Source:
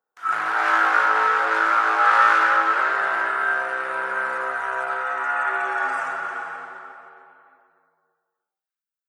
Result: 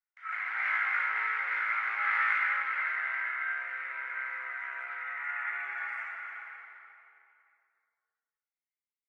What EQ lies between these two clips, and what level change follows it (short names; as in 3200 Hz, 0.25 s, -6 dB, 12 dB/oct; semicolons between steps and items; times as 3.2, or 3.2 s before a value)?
band-pass 2100 Hz, Q 12; +5.5 dB